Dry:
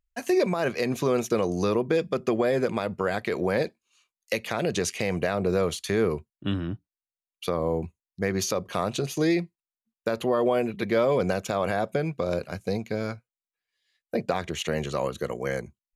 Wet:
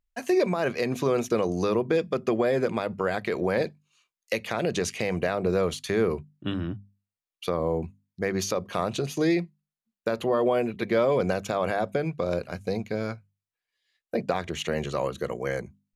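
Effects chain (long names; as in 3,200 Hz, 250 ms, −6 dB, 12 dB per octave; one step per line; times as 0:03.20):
high-shelf EQ 5,800 Hz −4.5 dB
mains-hum notches 50/100/150/200/250 Hz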